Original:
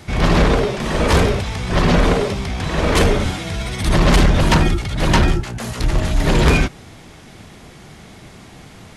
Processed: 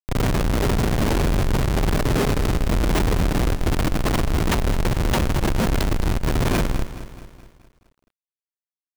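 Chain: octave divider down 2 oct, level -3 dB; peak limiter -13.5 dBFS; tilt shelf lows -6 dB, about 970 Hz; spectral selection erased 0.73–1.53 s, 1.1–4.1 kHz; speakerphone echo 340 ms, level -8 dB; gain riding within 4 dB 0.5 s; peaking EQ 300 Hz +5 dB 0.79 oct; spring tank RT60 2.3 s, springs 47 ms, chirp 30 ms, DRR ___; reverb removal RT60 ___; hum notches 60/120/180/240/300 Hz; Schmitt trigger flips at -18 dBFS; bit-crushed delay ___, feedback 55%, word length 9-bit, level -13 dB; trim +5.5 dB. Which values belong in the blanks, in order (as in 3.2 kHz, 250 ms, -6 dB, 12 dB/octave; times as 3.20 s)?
1.5 dB, 0.54 s, 213 ms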